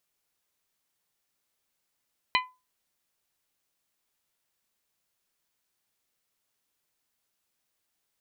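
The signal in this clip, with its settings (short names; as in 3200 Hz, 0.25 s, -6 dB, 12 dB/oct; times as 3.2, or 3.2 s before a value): glass hit bell, lowest mode 1010 Hz, decay 0.27 s, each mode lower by 1 dB, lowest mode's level -20.5 dB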